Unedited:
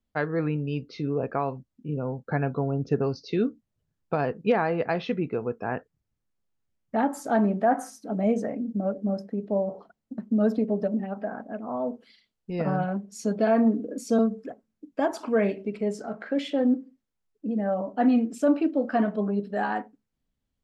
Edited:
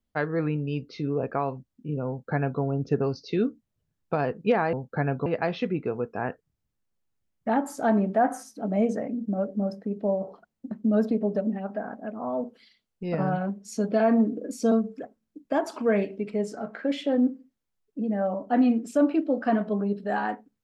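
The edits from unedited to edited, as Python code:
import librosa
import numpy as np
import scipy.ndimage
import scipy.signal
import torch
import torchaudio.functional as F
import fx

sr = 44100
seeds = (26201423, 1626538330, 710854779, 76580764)

y = fx.edit(x, sr, fx.duplicate(start_s=2.08, length_s=0.53, to_s=4.73), tone=tone)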